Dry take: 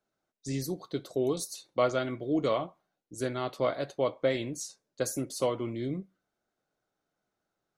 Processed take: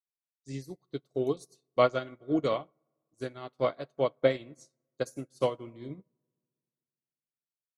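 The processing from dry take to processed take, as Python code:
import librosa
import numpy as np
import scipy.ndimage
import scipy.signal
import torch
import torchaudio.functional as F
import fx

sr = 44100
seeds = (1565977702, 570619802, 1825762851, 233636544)

y = scipy.signal.sosfilt(scipy.signal.butter(2, 11000.0, 'lowpass', fs=sr, output='sos'), x)
y = fx.rev_fdn(y, sr, rt60_s=2.3, lf_ratio=1.1, hf_ratio=0.3, size_ms=42.0, drr_db=14.0)
y = fx.upward_expand(y, sr, threshold_db=-47.0, expansion=2.5)
y = y * 10.0 ** (5.0 / 20.0)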